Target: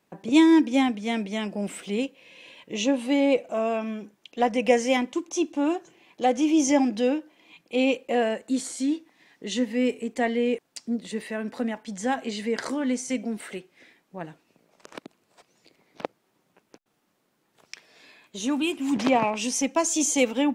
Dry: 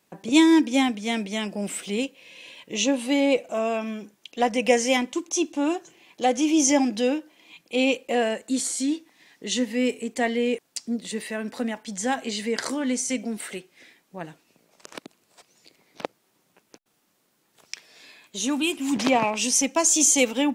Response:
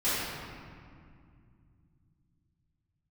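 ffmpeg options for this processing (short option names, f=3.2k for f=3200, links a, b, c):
-af "highshelf=f=3.3k:g=-9"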